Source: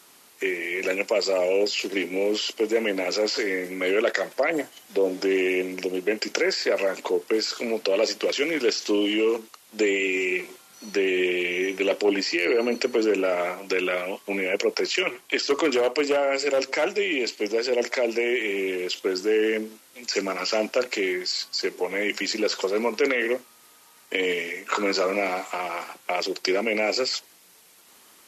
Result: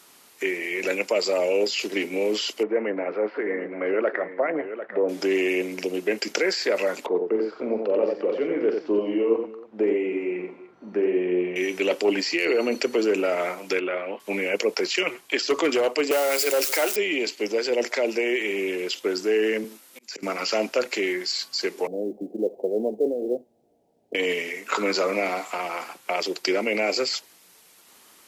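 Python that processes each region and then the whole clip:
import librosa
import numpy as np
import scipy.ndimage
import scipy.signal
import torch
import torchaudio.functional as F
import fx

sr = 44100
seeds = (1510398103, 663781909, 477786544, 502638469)

y = fx.chain(x, sr, fx.lowpass(hz=1800.0, slope=24),
    fx.low_shelf(hz=110.0, db=-11.5),
    fx.echo_single(ms=747, db=-10.5), at=(2.63, 5.09))
y = fx.chain(y, sr, fx.lowpass(hz=1000.0, slope=12),
    fx.echo_multitap(ms=(44, 89, 294), db=(-9.5, -5.0, -18.0)), at=(7.06, 11.56))
y = fx.chain(y, sr, fx.law_mismatch(coded='mu'),
    fx.highpass(hz=250.0, slope=12),
    fx.air_absorb(metres=490.0), at=(13.79, 14.2))
y = fx.chain(y, sr, fx.crossing_spikes(level_db=-18.0),
    fx.highpass(hz=280.0, slope=24), at=(16.11, 16.96))
y = fx.chain(y, sr, fx.high_shelf(hz=12000.0, db=8.5),
    fx.auto_swell(attack_ms=375.0),
    fx.highpass(hz=160.0, slope=24), at=(19.64, 20.23))
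y = fx.chain(y, sr, fx.steep_lowpass(hz=750.0, slope=72),
    fx.quant_companded(bits=8), at=(21.87, 24.15))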